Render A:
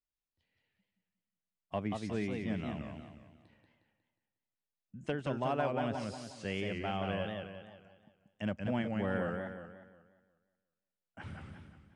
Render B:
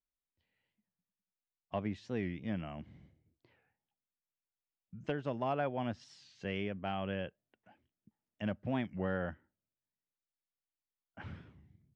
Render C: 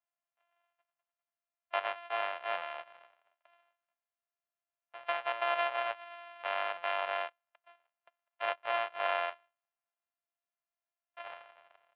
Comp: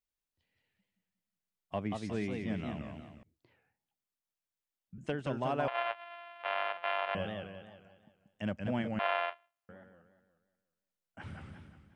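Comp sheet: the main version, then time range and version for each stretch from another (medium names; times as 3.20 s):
A
3.23–4.98 s: from B
5.68–7.15 s: from C
8.99–9.69 s: from C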